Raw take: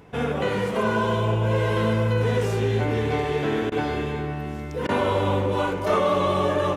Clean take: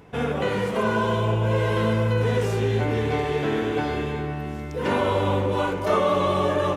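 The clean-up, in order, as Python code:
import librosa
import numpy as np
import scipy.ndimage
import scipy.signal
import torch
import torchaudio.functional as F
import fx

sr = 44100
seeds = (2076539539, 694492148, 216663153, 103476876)

y = fx.fix_declip(x, sr, threshold_db=-13.5)
y = fx.fix_interpolate(y, sr, at_s=(3.7, 4.87), length_ms=17.0)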